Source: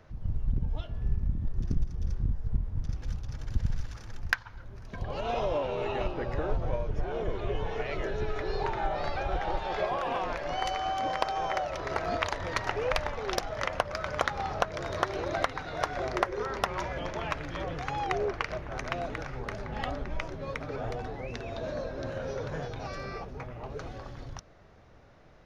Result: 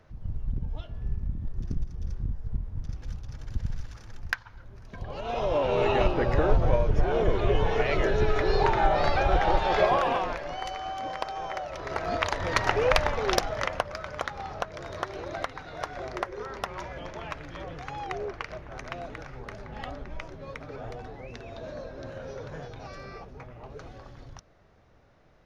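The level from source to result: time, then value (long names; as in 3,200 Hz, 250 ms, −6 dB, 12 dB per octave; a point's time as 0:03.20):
0:05.24 −2 dB
0:05.77 +8 dB
0:09.96 +8 dB
0:10.57 −3.5 dB
0:11.61 −3.5 dB
0:12.64 +6.5 dB
0:13.33 +6.5 dB
0:14.09 −4 dB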